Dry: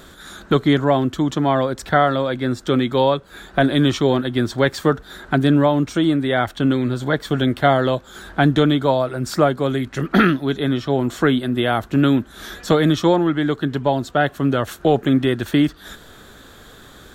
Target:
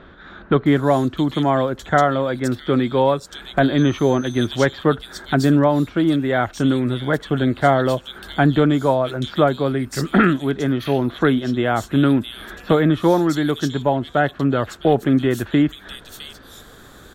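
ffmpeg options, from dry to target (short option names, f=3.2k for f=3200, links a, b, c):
-filter_complex "[0:a]acrossover=split=3100[a][b];[b]adelay=660[c];[a][c]amix=inputs=2:normalize=0,asettb=1/sr,asplit=3[d][e][f];[d]atrim=end=3.784[g];[e]atrim=start=3.78:end=4.47,asetpts=PTS-STARTPTS,afade=t=in:d=0.004:c=qsin,afade=t=out:st=0.686:d=0.004:c=qsin,aeval=exprs='val(0)+0.00708*sin(2*PI*6200*n/s)':c=same[h];[f]atrim=start=4.466[i];[g][h]acrossfade=d=0.004:c1=hsin:c2=qsin[j];[j][i]acrossfade=d=0.004:c1=qsin:c2=hsin"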